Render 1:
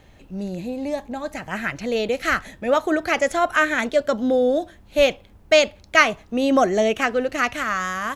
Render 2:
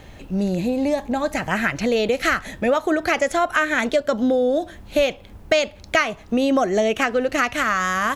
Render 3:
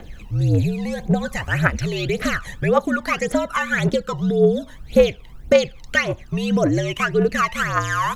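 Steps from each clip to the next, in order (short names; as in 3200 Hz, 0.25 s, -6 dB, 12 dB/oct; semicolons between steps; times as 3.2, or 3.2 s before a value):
compressor 4:1, threshold -26 dBFS, peak gain reduction 14.5 dB; gain +8.5 dB
frequency shift -70 Hz; phaser 1.8 Hz, delay 1.1 ms, feedback 72%; gain -3.5 dB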